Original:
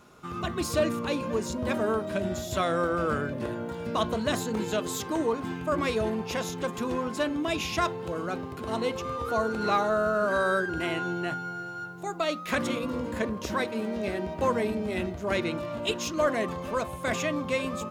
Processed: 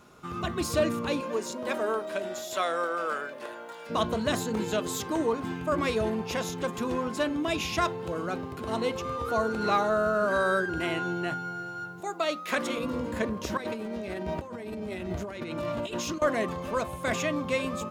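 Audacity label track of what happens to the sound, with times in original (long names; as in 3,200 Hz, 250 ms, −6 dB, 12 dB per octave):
1.200000	3.890000	high-pass filter 290 Hz → 780 Hz
12.000000	12.780000	high-pass filter 270 Hz
13.570000	16.220000	compressor whose output falls as the input rises −35 dBFS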